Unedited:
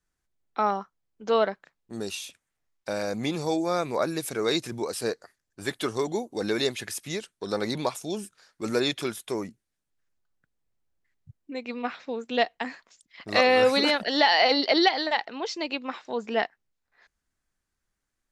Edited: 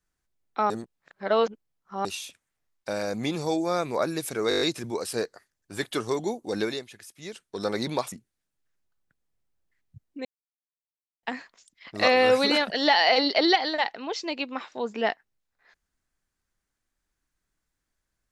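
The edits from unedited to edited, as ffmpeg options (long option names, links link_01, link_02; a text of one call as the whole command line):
ffmpeg -i in.wav -filter_complex "[0:a]asplit=14[link_01][link_02][link_03][link_04][link_05][link_06][link_07][link_08][link_09][link_10][link_11][link_12][link_13][link_14];[link_01]atrim=end=0.702[link_15];[link_02]atrim=start=0.698:end=2.052,asetpts=PTS-STARTPTS,areverse[link_16];[link_03]atrim=start=2.048:end=4.512[link_17];[link_04]atrim=start=4.488:end=4.512[link_18];[link_05]atrim=start=4.488:end=4.512[link_19];[link_06]atrim=start=4.488:end=4.512[link_20];[link_07]atrim=start=4.488:end=4.512[link_21];[link_08]atrim=start=4.488:end=4.512[link_22];[link_09]atrim=start=4.488:end=6.77,asetpts=PTS-STARTPTS,afade=type=out:start_time=2.022:duration=0.26:curve=qua:silence=0.237137[link_23];[link_10]atrim=start=6.77:end=7.02,asetpts=PTS-STARTPTS,volume=-12.5dB[link_24];[link_11]atrim=start=7.02:end=8.002,asetpts=PTS-STARTPTS,afade=type=in:duration=0.26:curve=qua:silence=0.237137[link_25];[link_12]atrim=start=9.448:end=11.58,asetpts=PTS-STARTPTS,afade=type=out:start_time=2.128:duration=0.004:curve=hsin[link_26];[link_13]atrim=start=11.58:end=12.56,asetpts=PTS-STARTPTS,volume=0[link_27];[link_14]atrim=start=12.56,asetpts=PTS-STARTPTS,afade=type=in:duration=0.004:curve=hsin[link_28];[link_15][link_16]acrossfade=duration=0.004:curve1=hsin:curve2=hsin[link_29];[link_29][link_17]acrossfade=duration=0.004:curve1=hsin:curve2=hsin[link_30];[link_30][link_18]acrossfade=duration=0.004:curve1=hsin:curve2=hsin[link_31];[link_31][link_19]acrossfade=duration=0.004:curve1=hsin:curve2=hsin[link_32];[link_32][link_20]acrossfade=duration=0.004:curve1=hsin:curve2=hsin[link_33];[link_33][link_21]acrossfade=duration=0.004:curve1=hsin:curve2=hsin[link_34];[link_34][link_22]acrossfade=duration=0.004:curve1=hsin:curve2=hsin[link_35];[link_23][link_24][link_25]concat=n=3:v=0:a=1[link_36];[link_35][link_36]acrossfade=duration=0.004:curve1=hsin:curve2=hsin[link_37];[link_26][link_27][link_28]concat=n=3:v=0:a=1[link_38];[link_37][link_38]acrossfade=duration=0.004:curve1=hsin:curve2=hsin" out.wav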